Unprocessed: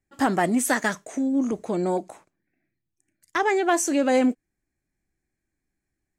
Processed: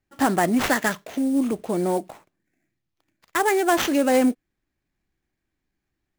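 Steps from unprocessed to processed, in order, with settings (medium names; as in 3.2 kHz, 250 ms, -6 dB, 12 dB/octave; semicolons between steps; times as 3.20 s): sample-rate reducer 9.2 kHz, jitter 20%; trim +1.5 dB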